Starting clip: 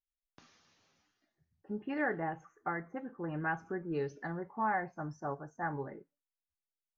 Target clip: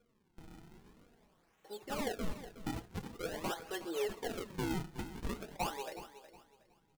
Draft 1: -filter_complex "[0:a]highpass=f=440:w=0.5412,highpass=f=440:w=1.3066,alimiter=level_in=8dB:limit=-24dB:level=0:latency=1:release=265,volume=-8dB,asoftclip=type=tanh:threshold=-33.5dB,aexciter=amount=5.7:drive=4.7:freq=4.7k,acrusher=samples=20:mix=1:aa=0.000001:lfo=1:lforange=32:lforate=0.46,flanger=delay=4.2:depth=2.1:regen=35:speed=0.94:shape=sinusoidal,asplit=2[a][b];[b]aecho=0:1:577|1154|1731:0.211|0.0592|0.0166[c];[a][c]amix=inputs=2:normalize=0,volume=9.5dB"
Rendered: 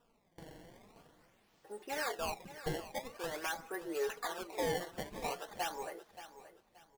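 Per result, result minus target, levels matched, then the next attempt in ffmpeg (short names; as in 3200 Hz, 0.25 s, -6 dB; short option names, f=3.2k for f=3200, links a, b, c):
echo 0.21 s late; decimation with a swept rate: distortion -6 dB
-filter_complex "[0:a]highpass=f=440:w=0.5412,highpass=f=440:w=1.3066,alimiter=level_in=8dB:limit=-24dB:level=0:latency=1:release=265,volume=-8dB,asoftclip=type=tanh:threshold=-33.5dB,aexciter=amount=5.7:drive=4.7:freq=4.7k,acrusher=samples=20:mix=1:aa=0.000001:lfo=1:lforange=32:lforate=0.46,flanger=delay=4.2:depth=2.1:regen=35:speed=0.94:shape=sinusoidal,asplit=2[a][b];[b]aecho=0:1:367|734|1101:0.211|0.0592|0.0166[c];[a][c]amix=inputs=2:normalize=0,volume=9.5dB"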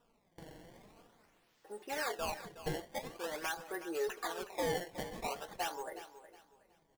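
decimation with a swept rate: distortion -6 dB
-filter_complex "[0:a]highpass=f=440:w=0.5412,highpass=f=440:w=1.3066,alimiter=level_in=8dB:limit=-24dB:level=0:latency=1:release=265,volume=-8dB,asoftclip=type=tanh:threshold=-33.5dB,aexciter=amount=5.7:drive=4.7:freq=4.7k,acrusher=samples=45:mix=1:aa=0.000001:lfo=1:lforange=72:lforate=0.46,flanger=delay=4.2:depth=2.1:regen=35:speed=0.94:shape=sinusoidal,asplit=2[a][b];[b]aecho=0:1:367|734|1101:0.211|0.0592|0.0166[c];[a][c]amix=inputs=2:normalize=0,volume=9.5dB"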